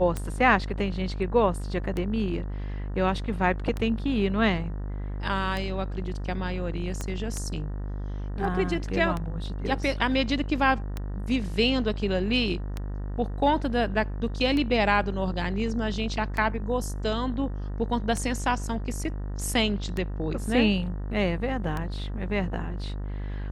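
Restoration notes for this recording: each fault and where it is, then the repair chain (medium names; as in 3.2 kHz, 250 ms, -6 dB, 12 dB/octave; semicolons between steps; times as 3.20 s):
buzz 50 Hz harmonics 38 -32 dBFS
tick 33 1/3 rpm -17 dBFS
7.01 s: pop -18 dBFS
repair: de-click; de-hum 50 Hz, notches 38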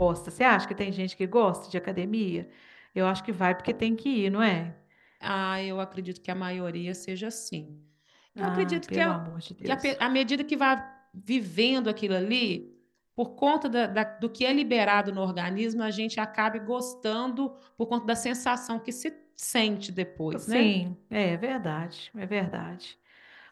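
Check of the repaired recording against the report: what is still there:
7.01 s: pop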